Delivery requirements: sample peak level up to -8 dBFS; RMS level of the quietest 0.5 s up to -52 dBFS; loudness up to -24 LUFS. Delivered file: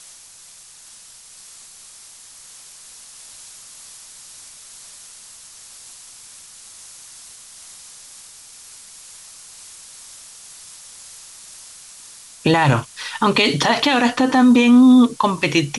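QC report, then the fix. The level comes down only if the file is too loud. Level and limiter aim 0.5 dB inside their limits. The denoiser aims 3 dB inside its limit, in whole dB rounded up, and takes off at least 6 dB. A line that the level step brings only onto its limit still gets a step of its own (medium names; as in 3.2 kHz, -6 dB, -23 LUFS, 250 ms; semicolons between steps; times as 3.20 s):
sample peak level -5.0 dBFS: fail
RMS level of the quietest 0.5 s -44 dBFS: fail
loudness -15.0 LUFS: fail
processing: trim -9.5 dB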